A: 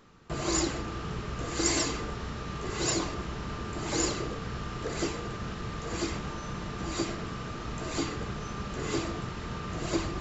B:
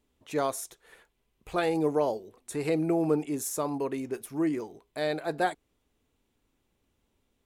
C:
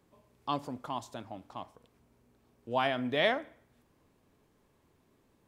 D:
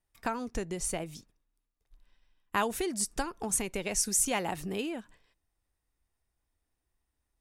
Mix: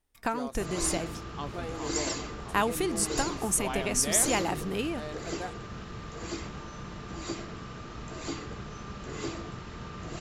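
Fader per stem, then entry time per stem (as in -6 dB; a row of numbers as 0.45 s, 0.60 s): -4.5 dB, -12.0 dB, -6.0 dB, +2.5 dB; 0.30 s, 0.00 s, 0.90 s, 0.00 s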